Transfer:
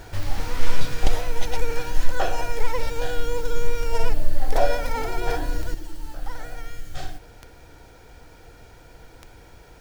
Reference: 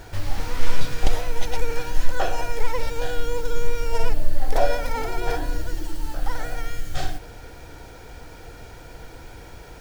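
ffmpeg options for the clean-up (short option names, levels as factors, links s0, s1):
-af "adeclick=t=4,asetnsamples=n=441:p=0,asendcmd='5.74 volume volume 6dB',volume=1"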